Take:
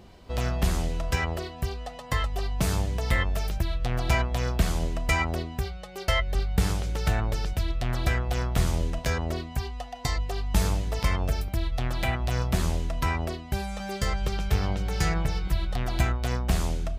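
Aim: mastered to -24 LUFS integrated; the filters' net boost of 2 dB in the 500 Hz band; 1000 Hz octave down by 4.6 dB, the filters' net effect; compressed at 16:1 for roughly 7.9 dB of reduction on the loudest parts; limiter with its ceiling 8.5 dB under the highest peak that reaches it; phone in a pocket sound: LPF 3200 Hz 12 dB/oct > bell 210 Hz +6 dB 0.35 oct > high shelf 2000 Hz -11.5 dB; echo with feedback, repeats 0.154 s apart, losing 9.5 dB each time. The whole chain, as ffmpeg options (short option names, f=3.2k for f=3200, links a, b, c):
-af "equalizer=f=500:t=o:g=5,equalizer=f=1k:t=o:g=-5.5,acompressor=threshold=-25dB:ratio=16,alimiter=limit=-23dB:level=0:latency=1,lowpass=3.2k,equalizer=f=210:t=o:w=0.35:g=6,highshelf=f=2k:g=-11.5,aecho=1:1:154|308|462|616:0.335|0.111|0.0365|0.012,volume=10dB"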